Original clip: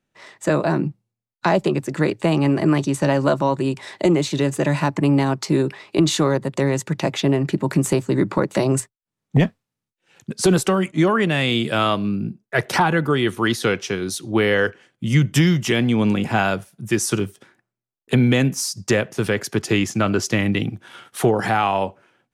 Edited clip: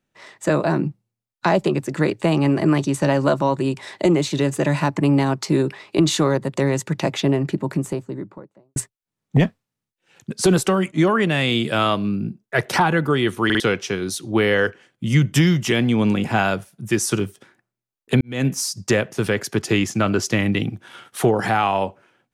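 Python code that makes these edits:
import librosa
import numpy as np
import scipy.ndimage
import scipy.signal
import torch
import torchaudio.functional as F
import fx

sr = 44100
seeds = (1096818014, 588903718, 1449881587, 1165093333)

y = fx.studio_fade_out(x, sr, start_s=7.07, length_s=1.69)
y = fx.edit(y, sr, fx.stutter_over(start_s=13.45, slice_s=0.05, count=3),
    fx.fade_in_span(start_s=18.21, length_s=0.25, curve='qua'), tone=tone)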